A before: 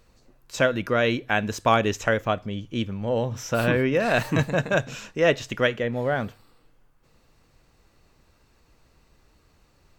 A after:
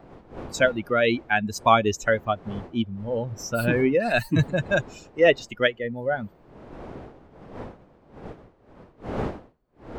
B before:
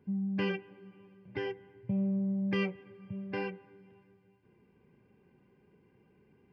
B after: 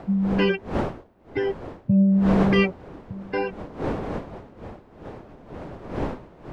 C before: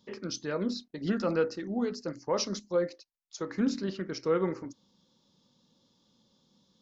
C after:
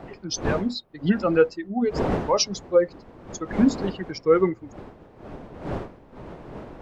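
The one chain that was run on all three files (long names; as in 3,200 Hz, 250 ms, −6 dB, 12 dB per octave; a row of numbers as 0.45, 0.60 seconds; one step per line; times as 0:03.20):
spectral dynamics exaggerated over time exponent 2
wind on the microphone 520 Hz −46 dBFS
loudness normalisation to −24 LKFS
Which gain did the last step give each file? +5.0, +14.0, +12.0 decibels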